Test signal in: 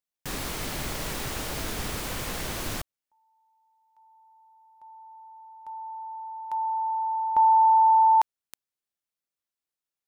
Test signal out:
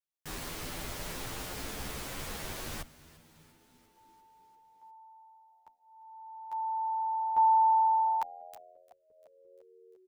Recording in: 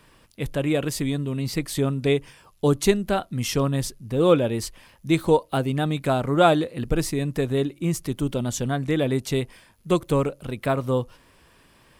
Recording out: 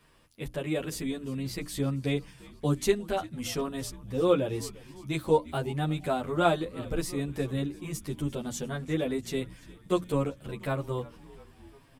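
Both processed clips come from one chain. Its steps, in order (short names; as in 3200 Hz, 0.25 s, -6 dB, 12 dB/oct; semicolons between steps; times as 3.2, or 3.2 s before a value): notches 60/120/180/240/300 Hz; on a send: frequency-shifting echo 0.347 s, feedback 65%, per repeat -86 Hz, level -20 dB; on the sum: endless flanger 10.3 ms +0.36 Hz; gain -4 dB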